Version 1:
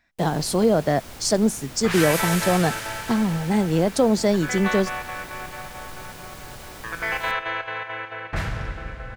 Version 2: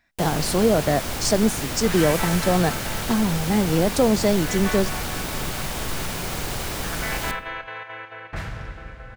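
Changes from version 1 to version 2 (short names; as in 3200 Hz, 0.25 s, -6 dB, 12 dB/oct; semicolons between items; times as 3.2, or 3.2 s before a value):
first sound +12.0 dB; second sound -4.5 dB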